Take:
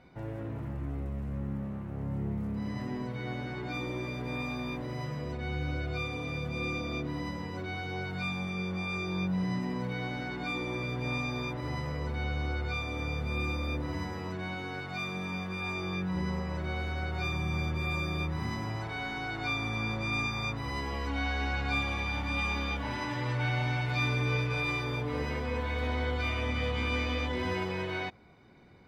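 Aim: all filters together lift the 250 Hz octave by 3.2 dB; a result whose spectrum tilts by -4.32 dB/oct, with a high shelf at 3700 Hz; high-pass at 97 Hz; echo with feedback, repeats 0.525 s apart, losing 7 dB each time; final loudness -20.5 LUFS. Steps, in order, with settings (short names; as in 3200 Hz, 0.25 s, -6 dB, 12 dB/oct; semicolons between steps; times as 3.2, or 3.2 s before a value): HPF 97 Hz; bell 250 Hz +4.5 dB; high shelf 3700 Hz +4.5 dB; feedback echo 0.525 s, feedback 45%, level -7 dB; gain +11 dB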